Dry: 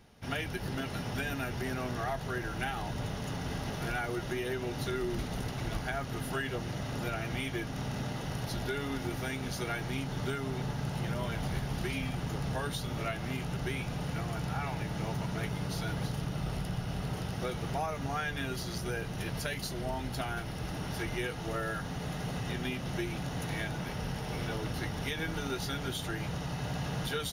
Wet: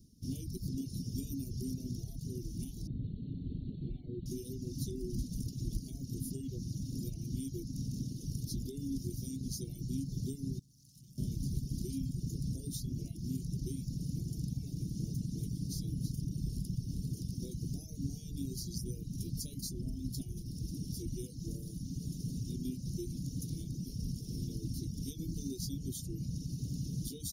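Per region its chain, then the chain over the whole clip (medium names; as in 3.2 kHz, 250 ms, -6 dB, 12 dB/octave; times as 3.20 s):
2.87–4.26 s: Chebyshev low-pass 4.3 kHz, order 10 + treble shelf 3.1 kHz -7.5 dB
10.59–11.18 s: high-pass 68 Hz + amplifier tone stack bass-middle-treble 5-5-5 + valve stage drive 46 dB, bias 0.45
whole clip: elliptic band-stop 290–5300 Hz, stop band 80 dB; reverb removal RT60 1.1 s; trim +2 dB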